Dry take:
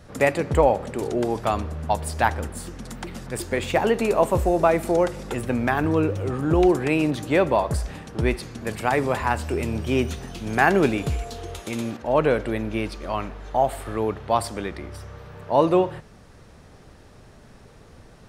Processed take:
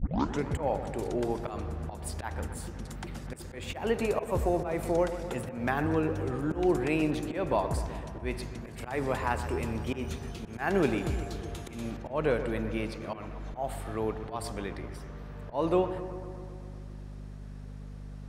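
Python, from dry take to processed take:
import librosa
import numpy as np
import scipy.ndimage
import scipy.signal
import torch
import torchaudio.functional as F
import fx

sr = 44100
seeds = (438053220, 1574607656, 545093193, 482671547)

p1 = fx.tape_start_head(x, sr, length_s=0.45)
p2 = fx.add_hum(p1, sr, base_hz=50, snr_db=11)
p3 = fx.auto_swell(p2, sr, attack_ms=173.0)
p4 = p3 + fx.echo_bbd(p3, sr, ms=127, stages=2048, feedback_pct=71, wet_db=-11.5, dry=0)
y = p4 * 10.0 ** (-7.0 / 20.0)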